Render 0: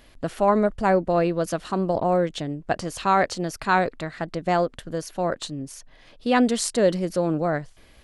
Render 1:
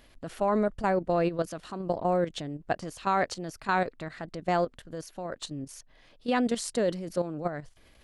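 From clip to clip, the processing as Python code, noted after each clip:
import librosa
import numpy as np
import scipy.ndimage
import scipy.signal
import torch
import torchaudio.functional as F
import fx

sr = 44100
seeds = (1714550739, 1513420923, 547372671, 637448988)

y = fx.level_steps(x, sr, step_db=11)
y = y * librosa.db_to_amplitude(-2.5)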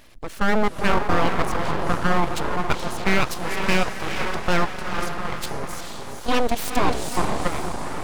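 y = fx.echo_diffused(x, sr, ms=458, feedback_pct=54, wet_db=-5)
y = np.abs(y)
y = y * librosa.db_to_amplitude(8.5)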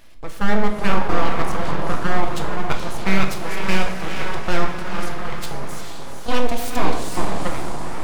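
y = fx.room_shoebox(x, sr, seeds[0], volume_m3=280.0, walls='mixed', distance_m=0.7)
y = y * librosa.db_to_amplitude(-2.0)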